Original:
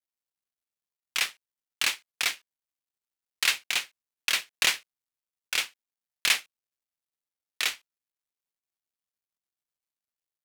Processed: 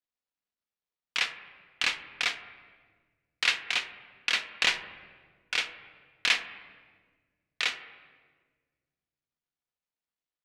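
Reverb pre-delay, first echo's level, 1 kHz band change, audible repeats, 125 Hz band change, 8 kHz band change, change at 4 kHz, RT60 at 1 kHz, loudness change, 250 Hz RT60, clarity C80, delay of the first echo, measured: 4 ms, no echo audible, +0.5 dB, no echo audible, can't be measured, −8.5 dB, −1.5 dB, 1.4 s, −1.5 dB, 2.2 s, 13.0 dB, no echo audible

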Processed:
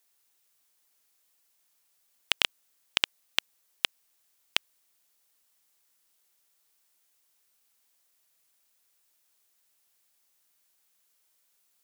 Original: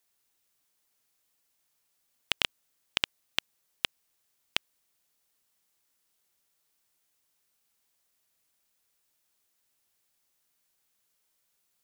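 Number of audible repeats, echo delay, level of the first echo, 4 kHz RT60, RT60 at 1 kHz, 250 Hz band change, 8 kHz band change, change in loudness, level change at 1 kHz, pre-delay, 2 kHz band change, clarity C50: no echo audible, no echo audible, no echo audible, no reverb audible, no reverb audible, −2.0 dB, +4.0 dB, +3.0 dB, +2.0 dB, no reverb audible, +2.5 dB, no reverb audible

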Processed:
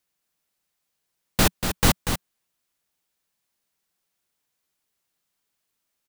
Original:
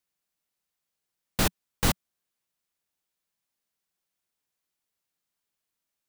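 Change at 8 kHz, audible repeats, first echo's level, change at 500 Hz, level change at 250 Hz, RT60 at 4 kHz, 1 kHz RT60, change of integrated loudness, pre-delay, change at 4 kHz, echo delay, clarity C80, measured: +6.0 dB, 1, −7.5 dB, +6.0 dB, +6.0 dB, no reverb audible, no reverb audible, +5.5 dB, no reverb audible, +6.0 dB, 239 ms, no reverb audible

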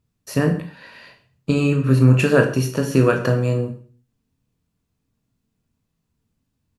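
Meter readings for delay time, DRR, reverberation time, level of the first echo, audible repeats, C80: 133 ms, 4.0 dB, 0.45 s, −20.0 dB, 1, 13.5 dB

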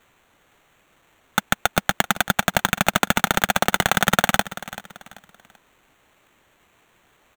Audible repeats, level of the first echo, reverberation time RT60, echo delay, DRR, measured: 3, −16.0 dB, no reverb audible, 386 ms, no reverb audible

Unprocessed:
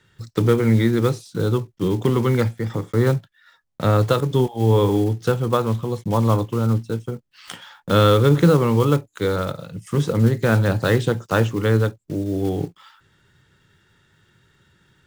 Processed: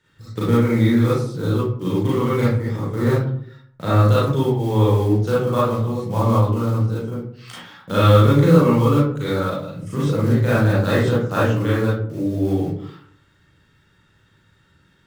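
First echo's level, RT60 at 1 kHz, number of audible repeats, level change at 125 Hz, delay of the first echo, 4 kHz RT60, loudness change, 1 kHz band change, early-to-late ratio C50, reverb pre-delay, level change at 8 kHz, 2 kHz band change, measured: no echo audible, 0.55 s, no echo audible, +1.5 dB, no echo audible, 0.30 s, +1.0 dB, +1.5 dB, −0.5 dB, 32 ms, can't be measured, 0.0 dB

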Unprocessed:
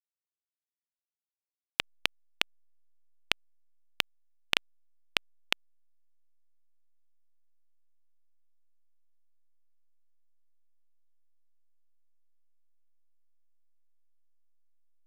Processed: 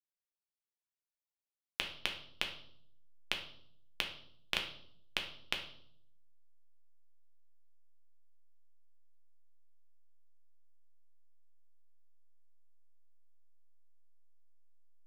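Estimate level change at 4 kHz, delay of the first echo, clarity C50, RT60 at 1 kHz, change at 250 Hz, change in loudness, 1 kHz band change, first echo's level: −6.0 dB, no echo audible, 8.5 dB, 0.55 s, −5.0 dB, −6.0 dB, −6.0 dB, no echo audible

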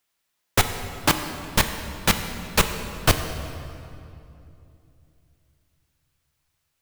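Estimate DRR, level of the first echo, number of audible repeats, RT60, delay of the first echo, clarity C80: 6.5 dB, no echo audible, no echo audible, 2.8 s, no echo audible, 8.5 dB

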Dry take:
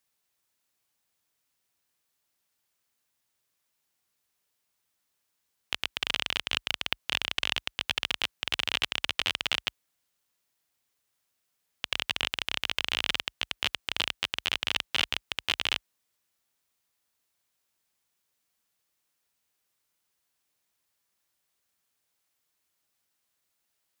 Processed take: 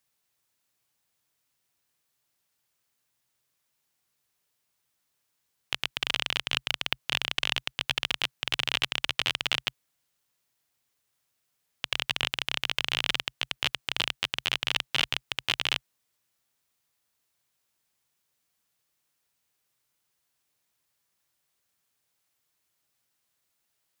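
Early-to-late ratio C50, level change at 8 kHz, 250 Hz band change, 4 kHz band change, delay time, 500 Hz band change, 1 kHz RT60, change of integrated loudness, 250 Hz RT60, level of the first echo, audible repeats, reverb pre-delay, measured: no reverb audible, +1.0 dB, +1.5 dB, +1.0 dB, no echo audible, +1.0 dB, no reverb audible, +1.0 dB, no reverb audible, no echo audible, no echo audible, no reverb audible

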